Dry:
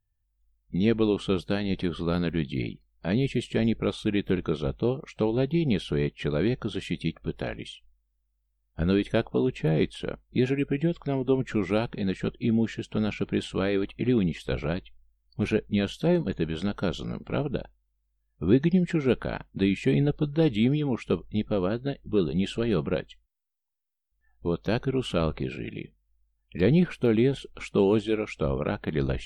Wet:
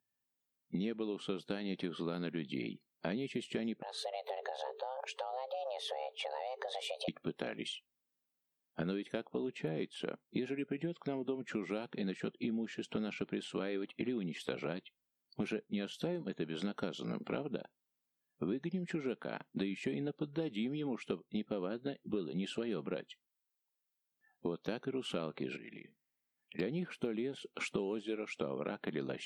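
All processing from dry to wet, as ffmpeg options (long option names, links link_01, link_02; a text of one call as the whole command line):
ffmpeg -i in.wav -filter_complex "[0:a]asettb=1/sr,asplit=3[link_01][link_02][link_03];[link_01]atrim=end=3.824[link_04];[link_02]atrim=start=3.82:end=7.08,asetpts=PTS-STARTPTS,afade=type=in:duration=0.004:curve=qsin,afade=type=out:start_time=3.256:duration=0.004:curve=qsin,acompressor=threshold=-36dB:ratio=16:attack=3.2:release=140:knee=1:detection=peak,afreqshift=390[link_05];[link_03]atrim=start=7.076[link_06];[link_04][link_05]acrossfade=duration=0.004:curve1=hsin:curve2=qsin[link_07];[link_07][link_06]acrossfade=duration=0.004:curve1=qsin:curve2=hsin,asettb=1/sr,asplit=3[link_08][link_09][link_10];[link_08]atrim=end=25.564[link_11];[link_09]atrim=start=25.56:end=26.59,asetpts=PTS-STARTPTS,afade=type=in:duration=0.004:curve=qsin,afade=type=out:start_time=1.026:duration=0.004:curve=qsin,equalizer=frequency=2000:width_type=o:width=0.42:gain=10,acompressor=threshold=-45dB:ratio=12:attack=3.2:release=140:knee=1:detection=peak[link_12];[link_10]atrim=start=26.586[link_13];[link_11][link_12]acrossfade=duration=0.004:curve1=hsin:curve2=qsin[link_14];[link_14][link_13]acrossfade=duration=0.004:curve1=qsin:curve2=hsin,highpass=frequency=180:width=0.5412,highpass=frequency=180:width=1.3066,acompressor=threshold=-35dB:ratio=10,volume=1dB" out.wav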